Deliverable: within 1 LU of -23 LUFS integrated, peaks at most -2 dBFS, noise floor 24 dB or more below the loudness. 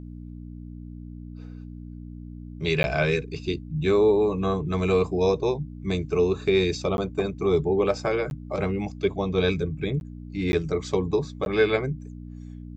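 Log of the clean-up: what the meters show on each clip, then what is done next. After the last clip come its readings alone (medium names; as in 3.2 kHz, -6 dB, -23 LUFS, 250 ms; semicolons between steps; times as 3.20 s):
dropouts 6; longest dropout 11 ms; hum 60 Hz; highest harmonic 300 Hz; hum level -36 dBFS; loudness -25.0 LUFS; peak level -9.0 dBFS; loudness target -23.0 LUFS
-> interpolate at 2.83/6.97/8.30/10.00/10.52/11.45 s, 11 ms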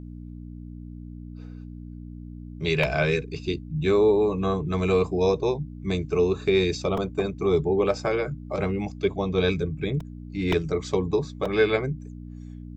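dropouts 0; hum 60 Hz; highest harmonic 300 Hz; hum level -36 dBFS
-> de-hum 60 Hz, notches 5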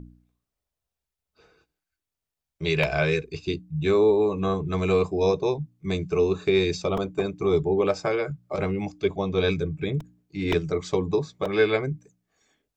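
hum not found; loudness -25.0 LUFS; peak level -9.0 dBFS; loudness target -23.0 LUFS
-> trim +2 dB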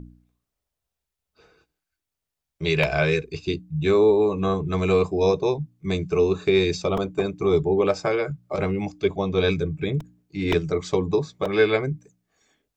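loudness -23.0 LUFS; peak level -7.0 dBFS; noise floor -85 dBFS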